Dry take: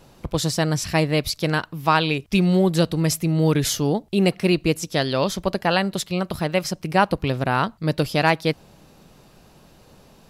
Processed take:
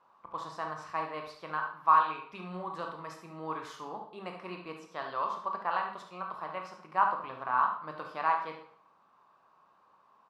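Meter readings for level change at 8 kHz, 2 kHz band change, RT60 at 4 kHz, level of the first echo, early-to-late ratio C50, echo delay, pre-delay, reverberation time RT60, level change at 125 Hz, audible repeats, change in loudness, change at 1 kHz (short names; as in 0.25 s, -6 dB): under -30 dB, -13.0 dB, 0.50 s, -9.0 dB, 5.0 dB, 72 ms, 17 ms, 0.60 s, -29.0 dB, 1, -12.0 dB, -4.0 dB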